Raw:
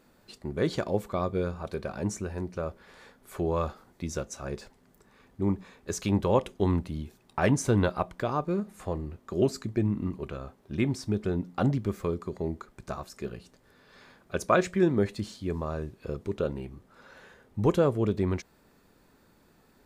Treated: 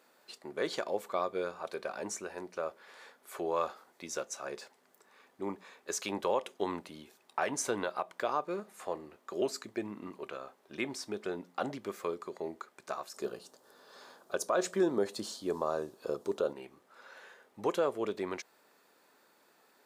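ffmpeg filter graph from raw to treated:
ffmpeg -i in.wav -filter_complex "[0:a]asettb=1/sr,asplit=3[link_01][link_02][link_03];[link_01]atrim=end=13.144[link_04];[link_02]atrim=start=13.14:end=16.53,asetpts=PTS-STARTPTS,afade=type=in:duration=0.004:curve=qsin,afade=type=out:start_time=3.386:duration=0.004:curve=qsin,equalizer=frequency=2200:width_type=o:width=0.99:gain=-13.5,acontrast=55[link_05];[link_03]atrim=start=16.526[link_06];[link_04][link_05]acrossfade=duration=0.004:curve1=hsin:curve2=qsin[link_07];[link_07][link_06]acrossfade=duration=0.004:curve1=qsin:curve2=hsin,highpass=500,alimiter=limit=-19.5dB:level=0:latency=1:release=152" out.wav

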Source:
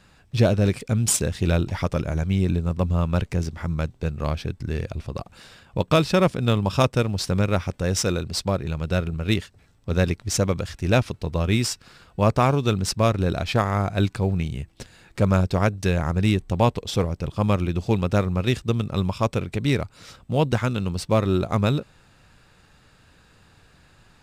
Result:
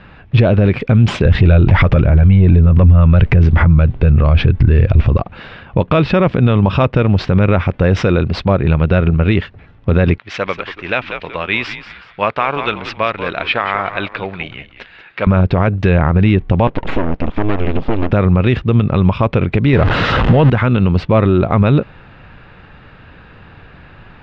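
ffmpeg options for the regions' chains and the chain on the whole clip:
ffmpeg -i in.wav -filter_complex "[0:a]asettb=1/sr,asplit=3[link_01][link_02][link_03];[link_01]atrim=end=1.254[link_04];[link_02]atrim=start=1.25:end=5.18,asetpts=PTS-STARTPTS,afade=type=in:duration=0.004:curve=qsin,afade=type=out:start_time=3.926:duration=0.004:curve=qsin,lowshelf=frequency=91:gain=10.5,acontrast=73[link_05];[link_03]atrim=start=5.176[link_06];[link_04][link_05]acrossfade=duration=0.004:curve1=hsin:curve2=qsin[link_07];[link_07][link_06]acrossfade=duration=0.004:curve1=qsin:curve2=hsin,asettb=1/sr,asplit=3[link_08][link_09][link_10];[link_08]atrim=end=10.184[link_11];[link_09]atrim=start=10.18:end=15.27,asetpts=PTS-STARTPTS,afade=type=in:duration=0.004:curve=qsin,afade=type=out:start_time=5.086:duration=0.004:curve=qsin,bandpass=frequency=2800:width_type=q:width=0.7,asplit=4[link_12][link_13][link_14][link_15];[link_13]adelay=186,afreqshift=-89,volume=-12.5dB[link_16];[link_14]adelay=372,afreqshift=-178,volume=-22.1dB[link_17];[link_15]adelay=558,afreqshift=-267,volume=-31.8dB[link_18];[link_12][link_16][link_17][link_18]amix=inputs=4:normalize=0,atrim=end_sample=224469[link_19];[link_10]atrim=start=15.266[link_20];[link_11][link_19]acrossfade=duration=0.004:curve1=hsin:curve2=qsin[link_21];[link_21][link_20]acrossfade=duration=0.004:curve1=qsin:curve2=hsin,asettb=1/sr,asplit=3[link_22][link_23][link_24];[link_22]atrim=end=16.674[link_25];[link_23]atrim=start=16.67:end=18.12,asetpts=PTS-STARTPTS,afade=type=in:duration=0.004:curve=qsin,afade=type=out:start_time=1.446:duration=0.004:curve=qsin,acompressor=threshold=-24dB:ratio=5:attack=3.2:release=140:knee=1:detection=peak,aeval=exprs='abs(val(0))':channel_layout=same[link_26];[link_24]atrim=start=18.116[link_27];[link_25][link_26]acrossfade=duration=0.004:curve1=hsin:curve2=qsin[link_28];[link_28][link_27]acrossfade=duration=0.004:curve1=qsin:curve2=hsin,asettb=1/sr,asplit=3[link_29][link_30][link_31];[link_29]atrim=end=19.734[link_32];[link_30]atrim=start=19.73:end=20.5,asetpts=PTS-STARTPTS,afade=type=in:duration=0.004:curve=qsin,afade=type=out:start_time=0.766:duration=0.004:curve=qsin,aeval=exprs='val(0)+0.5*0.0398*sgn(val(0))':channel_layout=same,acontrast=38,bandreject=frequency=2300:width=10[link_33];[link_31]atrim=start=20.496[link_34];[link_32][link_33]acrossfade=duration=0.004:curve1=hsin:curve2=qsin[link_35];[link_35][link_34]acrossfade=duration=0.004:curve1=qsin:curve2=hsin,lowpass=frequency=2900:width=0.5412,lowpass=frequency=2900:width=1.3066,alimiter=level_in=16.5dB:limit=-1dB:release=50:level=0:latency=1,volume=-1dB" out.wav

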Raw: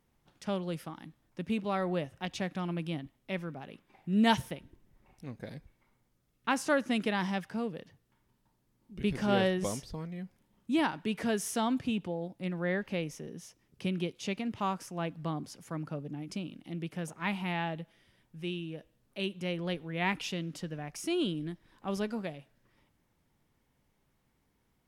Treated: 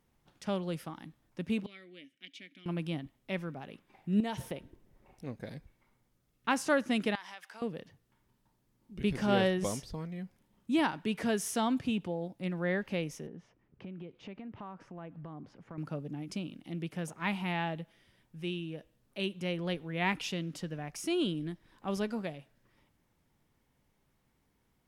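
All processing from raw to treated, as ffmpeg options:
ffmpeg -i in.wav -filter_complex "[0:a]asettb=1/sr,asplit=3[link_01][link_02][link_03];[link_01]atrim=end=1.664[link_04];[link_02]atrim=start=1.66:end=2.66,asetpts=PTS-STARTPTS,afade=type=in:duration=0.004:curve=qsin,afade=type=out:start_time=0.996:duration=0.004:curve=qsin,asplit=3[link_05][link_06][link_07];[link_05]bandpass=frequency=270:width_type=q:width=8,volume=0dB[link_08];[link_06]bandpass=frequency=2290:width_type=q:width=8,volume=-6dB[link_09];[link_07]bandpass=frequency=3010:width_type=q:width=8,volume=-9dB[link_10];[link_08][link_09][link_10]amix=inputs=3:normalize=0,aemphasis=mode=production:type=riaa[link_11];[link_03]atrim=start=2.656[link_12];[link_04][link_11]acrossfade=duration=0.004:curve1=hsin:curve2=qsin[link_13];[link_13][link_12]acrossfade=duration=0.004:curve1=qsin:curve2=hsin,asettb=1/sr,asplit=3[link_14][link_15][link_16];[link_14]atrim=end=4.204[link_17];[link_15]atrim=start=4.2:end=5.35,asetpts=PTS-STARTPTS,afade=type=in:duration=0.004:curve=qsin,afade=type=out:start_time=1.146:duration=0.004:curve=qsin,equalizer=frequency=500:width=1.1:gain=6,acompressor=threshold=-31dB:ratio=16:attack=3.2:release=140:knee=1:detection=peak[link_18];[link_16]atrim=start=5.346[link_19];[link_17][link_18]acrossfade=duration=0.004:curve1=hsin:curve2=qsin[link_20];[link_20][link_19]acrossfade=duration=0.004:curve1=qsin:curve2=hsin,asettb=1/sr,asplit=3[link_21][link_22][link_23];[link_21]atrim=end=7.154[link_24];[link_22]atrim=start=7.15:end=7.62,asetpts=PTS-STARTPTS,afade=type=in:duration=0.004:curve=qsin,afade=type=out:start_time=0.466:duration=0.004:curve=qsin,highpass=940,acompressor=threshold=-43dB:ratio=4:attack=3.2:release=140:knee=1:detection=peak[link_25];[link_23]atrim=start=7.616[link_26];[link_24][link_25]acrossfade=duration=0.004:curve1=hsin:curve2=qsin[link_27];[link_27][link_26]acrossfade=duration=0.004:curve1=qsin:curve2=hsin,asettb=1/sr,asplit=3[link_28][link_29][link_30];[link_28]atrim=end=13.274[link_31];[link_29]atrim=start=13.27:end=15.78,asetpts=PTS-STARTPTS,afade=type=in:duration=0.004:curve=qsin,afade=type=out:start_time=2.506:duration=0.004:curve=qsin,lowpass=1800,acompressor=threshold=-42dB:ratio=5:attack=3.2:release=140:knee=1:detection=peak[link_32];[link_30]atrim=start=15.776[link_33];[link_31][link_32]acrossfade=duration=0.004:curve1=hsin:curve2=qsin[link_34];[link_34][link_33]acrossfade=duration=0.004:curve1=qsin:curve2=hsin" out.wav

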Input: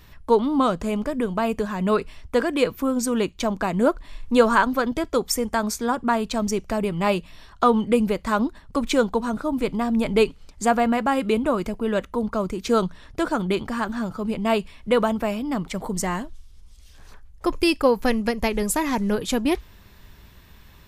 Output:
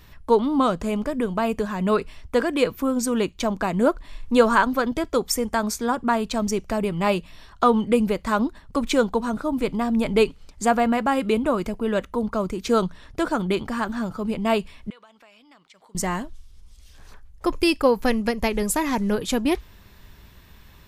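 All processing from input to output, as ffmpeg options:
ffmpeg -i in.wav -filter_complex "[0:a]asettb=1/sr,asplit=3[link_01][link_02][link_03];[link_01]atrim=end=14.904[link_04];[link_02]atrim=start=14.9:end=15.95,asetpts=PTS-STARTPTS,afade=type=in:duration=0.004:curve=qsin,afade=type=out:start_time=1.046:duration=0.004:curve=qsin,lowpass=3500,aderivative,acompressor=threshold=-49dB:ratio=3:attack=3.2:release=140:knee=1:detection=peak[link_05];[link_03]atrim=start=15.946[link_06];[link_04][link_05]acrossfade=duration=0.004:curve1=hsin:curve2=qsin[link_07];[link_07][link_06]acrossfade=duration=0.004:curve1=qsin:curve2=hsin" out.wav

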